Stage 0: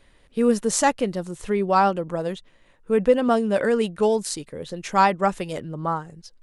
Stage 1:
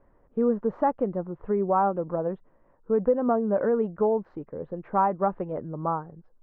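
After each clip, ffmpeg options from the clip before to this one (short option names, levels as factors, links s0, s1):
-af "lowpass=f=1200:w=0.5412,lowpass=f=1200:w=1.3066,lowshelf=f=190:g=-5,acompressor=threshold=0.0891:ratio=2"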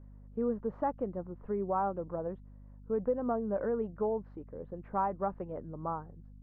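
-af "aeval=exprs='val(0)+0.00794*(sin(2*PI*50*n/s)+sin(2*PI*2*50*n/s)/2+sin(2*PI*3*50*n/s)/3+sin(2*PI*4*50*n/s)/4+sin(2*PI*5*50*n/s)/5)':c=same,volume=0.376"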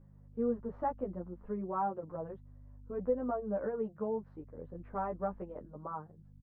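-filter_complex "[0:a]asplit=2[s0][s1];[s1]adelay=10.8,afreqshift=0.49[s2];[s0][s2]amix=inputs=2:normalize=1"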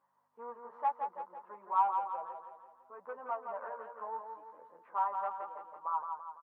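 -filter_complex "[0:a]asoftclip=type=tanh:threshold=0.0631,highpass=f=970:t=q:w=4.9,asplit=2[s0][s1];[s1]aecho=0:1:168|336|504|672|840|1008:0.501|0.246|0.12|0.059|0.0289|0.0142[s2];[s0][s2]amix=inputs=2:normalize=0,volume=0.708"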